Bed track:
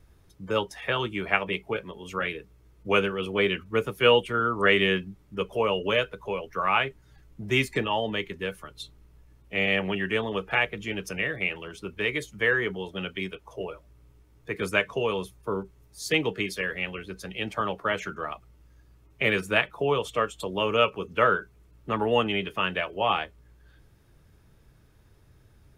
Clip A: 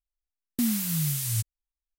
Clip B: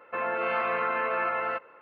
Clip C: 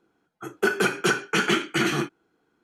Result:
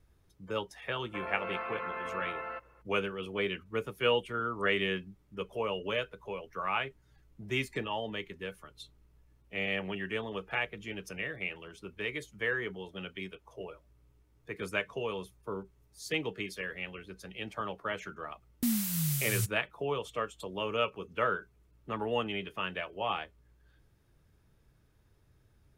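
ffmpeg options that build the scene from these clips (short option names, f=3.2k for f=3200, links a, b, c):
-filter_complex "[0:a]volume=-8.5dB[a];[2:a]atrim=end=1.81,asetpts=PTS-STARTPTS,volume=-10dB,afade=t=in:d=0.004:c=hsin,afade=t=out:st=1.806:d=0.004:c=hsin,adelay=1010[b];[1:a]atrim=end=1.98,asetpts=PTS-STARTPTS,volume=-4dB,afade=t=in:d=0.004:c=hsin,afade=t=out:st=1.976:d=0.004:c=hsin,adelay=18040[c];[a][b][c]amix=inputs=3:normalize=0"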